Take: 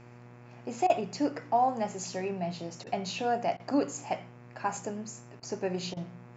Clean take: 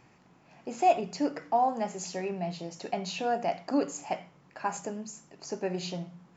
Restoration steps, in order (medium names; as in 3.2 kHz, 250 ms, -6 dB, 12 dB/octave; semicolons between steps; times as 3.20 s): de-hum 120.8 Hz, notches 22; interpolate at 0.87/2.84/3.57/5.40/5.94 s, 26 ms